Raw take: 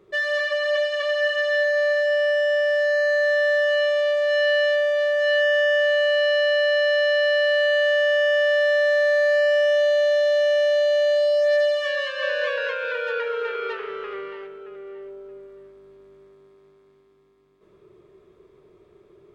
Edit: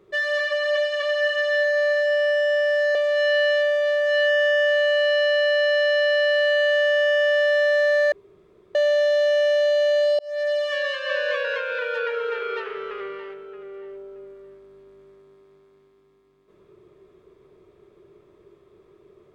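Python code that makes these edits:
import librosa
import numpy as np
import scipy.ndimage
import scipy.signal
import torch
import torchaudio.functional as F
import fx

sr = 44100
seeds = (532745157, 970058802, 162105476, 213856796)

y = fx.edit(x, sr, fx.cut(start_s=2.95, length_s=1.13),
    fx.room_tone_fill(start_s=9.25, length_s=0.63),
    fx.fade_in_span(start_s=11.32, length_s=0.68, curve='qsin'), tone=tone)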